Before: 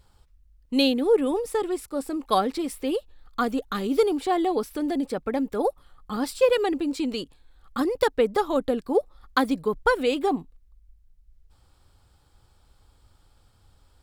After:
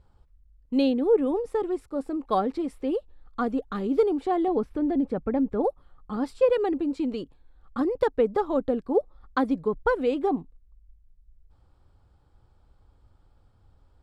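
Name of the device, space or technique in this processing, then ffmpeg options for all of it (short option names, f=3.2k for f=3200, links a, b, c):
through cloth: -filter_complex "[0:a]lowpass=9.4k,highshelf=f=2k:g=-16,asettb=1/sr,asplit=3[a][b][c];[a]atrim=end=4.484[d];[b]atrim=start=4.48:end=5.64,asetpts=PTS-STARTPTS,afade=t=in:d=0.004:c=qsin,afade=t=out:st=1.156:d=0.004:c=qsin,bass=f=250:g=6,treble=f=4k:g=-9[e];[c]atrim=start=5.636[f];[d][e]acrossfade=d=0.004:c1=hsin:c2=qsin[g];[g][f]acrossfade=d=0.004:c1=qsin:c2=hsin"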